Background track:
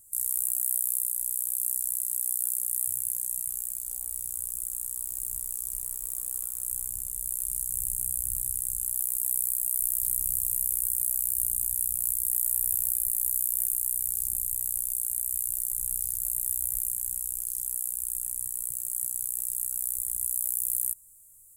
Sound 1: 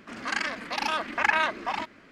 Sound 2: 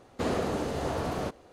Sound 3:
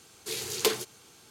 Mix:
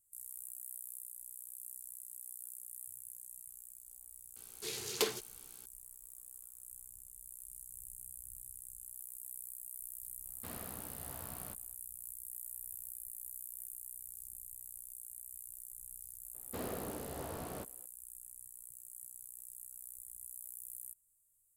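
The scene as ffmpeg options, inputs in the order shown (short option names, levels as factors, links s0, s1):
-filter_complex "[2:a]asplit=2[s0][s1];[0:a]volume=0.106[s2];[s0]equalizer=f=420:t=o:w=1.4:g=-10.5[s3];[3:a]atrim=end=1.3,asetpts=PTS-STARTPTS,volume=0.447,afade=t=in:d=0.004:c=hsin,afade=t=out:st=1.296:d=0.004:c=hsin,adelay=4360[s4];[s3]atrim=end=1.52,asetpts=PTS-STARTPTS,volume=0.178,afade=t=in:d=0.02,afade=t=out:st=1.5:d=0.02,adelay=10240[s5];[s1]atrim=end=1.52,asetpts=PTS-STARTPTS,volume=0.237,afade=t=in:d=0.004:c=hsin,afade=t=out:st=1.516:d=0.004:c=hsin,adelay=16340[s6];[s2][s4][s5][s6]amix=inputs=4:normalize=0"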